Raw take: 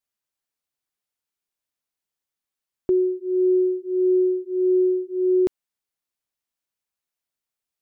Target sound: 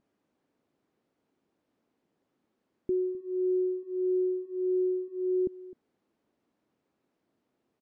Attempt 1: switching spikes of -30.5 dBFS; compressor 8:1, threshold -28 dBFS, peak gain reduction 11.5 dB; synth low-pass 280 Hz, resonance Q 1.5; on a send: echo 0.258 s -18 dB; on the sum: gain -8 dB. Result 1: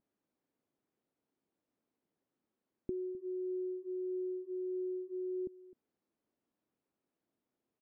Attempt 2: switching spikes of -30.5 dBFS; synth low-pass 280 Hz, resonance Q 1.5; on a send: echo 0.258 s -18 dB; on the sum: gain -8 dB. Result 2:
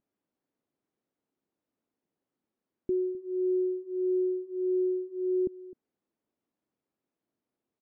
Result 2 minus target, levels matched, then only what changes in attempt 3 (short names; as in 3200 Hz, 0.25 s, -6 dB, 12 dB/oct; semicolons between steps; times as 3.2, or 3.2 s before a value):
switching spikes: distortion -10 dB
change: switching spikes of -20 dBFS